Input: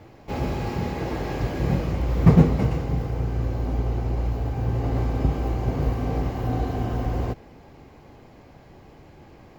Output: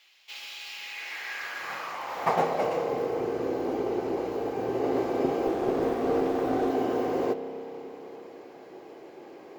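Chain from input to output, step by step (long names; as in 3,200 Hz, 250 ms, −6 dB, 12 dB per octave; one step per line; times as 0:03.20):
high-pass filter sweep 3,100 Hz → 380 Hz, 0:00.67–0:03.17
spring reverb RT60 3.9 s, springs 30 ms, chirp 35 ms, DRR 9.5 dB
0:05.47–0:06.70: windowed peak hold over 9 samples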